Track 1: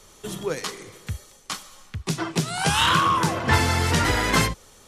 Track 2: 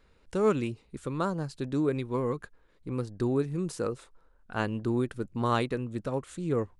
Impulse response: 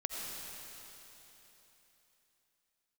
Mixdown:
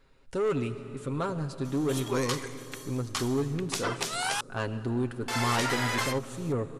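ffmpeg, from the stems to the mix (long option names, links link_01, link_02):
-filter_complex "[0:a]highpass=560,acompressor=threshold=-26dB:ratio=10,adelay=1650,volume=-0.5dB,asplit=3[link_01][link_02][link_03];[link_01]atrim=end=4.41,asetpts=PTS-STARTPTS,afade=type=out:start_time=4.406:duration=0.004:curve=hsin[link_04];[link_02]atrim=start=4.41:end=5.28,asetpts=PTS-STARTPTS,volume=0[link_05];[link_03]atrim=start=5.28,asetpts=PTS-STARTPTS,afade=type=in:duration=0.004:curve=hsin[link_06];[link_04][link_05][link_06]concat=n=3:v=0:a=1[link_07];[1:a]aecho=1:1:7.4:0.53,asoftclip=type=tanh:threshold=-22.5dB,volume=-2.5dB,asplit=2[link_08][link_09];[link_09]volume=-9dB[link_10];[2:a]atrim=start_sample=2205[link_11];[link_10][link_11]afir=irnorm=-1:irlink=0[link_12];[link_07][link_08][link_12]amix=inputs=3:normalize=0"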